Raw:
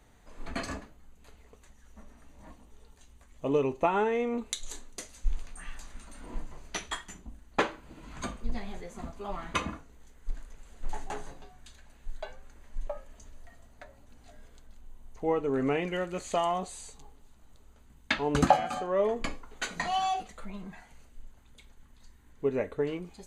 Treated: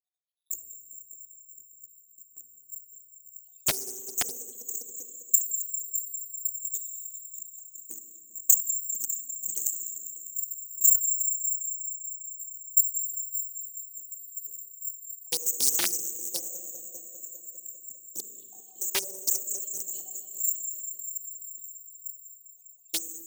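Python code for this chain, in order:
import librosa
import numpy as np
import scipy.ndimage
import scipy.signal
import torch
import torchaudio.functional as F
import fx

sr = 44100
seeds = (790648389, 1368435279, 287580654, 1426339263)

y = fx.spec_dropout(x, sr, seeds[0], share_pct=78)
y = scipy.signal.sosfilt(scipy.signal.ellip(3, 1.0, 50, [420.0, 4900.0], 'bandstop', fs=sr, output='sos'), y)
y = fx.low_shelf(y, sr, hz=440.0, db=5.0)
y = (np.kron(scipy.signal.resample_poly(y, 1, 6), np.eye(6)[0]) * 6)[:len(y)]
y = fx.filter_lfo_highpass(y, sr, shape='saw_up', hz=3.8, low_hz=370.0, high_hz=2300.0, q=0.75)
y = fx.peak_eq(y, sr, hz=63.0, db=13.0, octaves=0.61)
y = fx.echo_heads(y, sr, ms=200, heads='all three', feedback_pct=49, wet_db=-17.0)
y = fx.rev_schroeder(y, sr, rt60_s=2.1, comb_ms=33, drr_db=5.5)
y = fx.rider(y, sr, range_db=4, speed_s=2.0)
y = fx.doppler_dist(y, sr, depth_ms=0.93)
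y = F.gain(torch.from_numpy(y), -3.0).numpy()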